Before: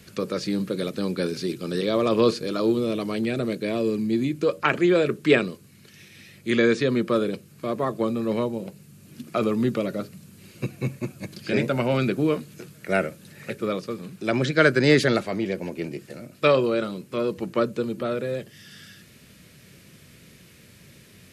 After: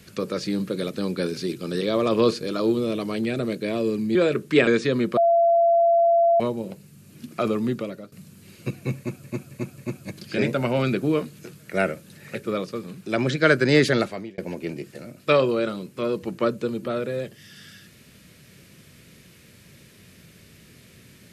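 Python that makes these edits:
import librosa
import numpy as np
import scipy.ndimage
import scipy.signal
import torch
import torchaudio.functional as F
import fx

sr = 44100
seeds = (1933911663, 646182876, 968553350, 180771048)

y = fx.edit(x, sr, fx.cut(start_s=4.15, length_s=0.74),
    fx.cut(start_s=5.41, length_s=1.22),
    fx.bleep(start_s=7.13, length_s=1.23, hz=679.0, db=-14.5),
    fx.fade_out_to(start_s=9.29, length_s=0.79, curve='qsin', floor_db=-18.5),
    fx.repeat(start_s=10.93, length_s=0.27, count=4),
    fx.fade_out_span(start_s=15.17, length_s=0.36), tone=tone)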